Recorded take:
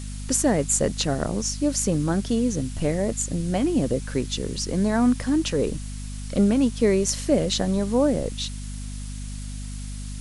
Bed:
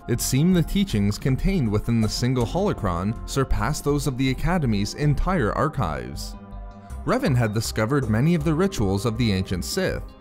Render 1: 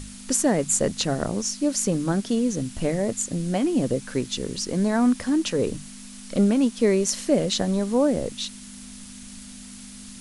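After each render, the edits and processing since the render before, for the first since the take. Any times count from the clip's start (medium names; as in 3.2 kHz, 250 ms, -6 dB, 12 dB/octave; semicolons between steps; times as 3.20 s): hum notches 50/100/150 Hz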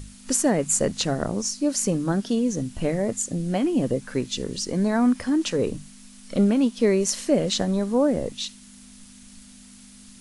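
noise print and reduce 6 dB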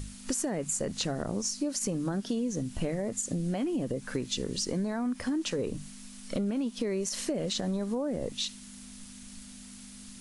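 peak limiter -16 dBFS, peak gain reduction 9.5 dB; compression, threshold -28 dBFS, peak gain reduction 9 dB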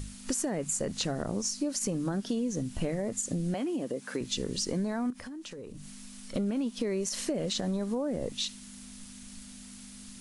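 3.54–4.21 s: high-pass 240 Hz; 5.10–6.34 s: compression, threshold -40 dBFS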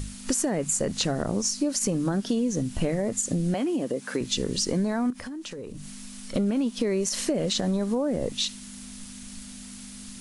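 trim +5.5 dB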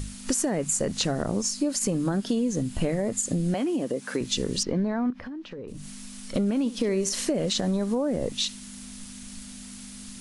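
1.38–3.49 s: band-stop 5.8 kHz; 4.63–5.68 s: distance through air 270 m; 6.58–7.25 s: flutter echo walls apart 11.7 m, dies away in 0.27 s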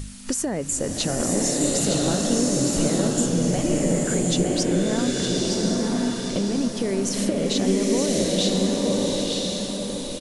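delay 914 ms -6 dB; swelling reverb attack 1090 ms, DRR -2.5 dB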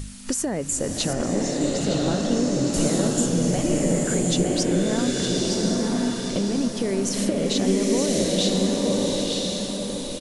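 1.13–2.74 s: distance through air 100 m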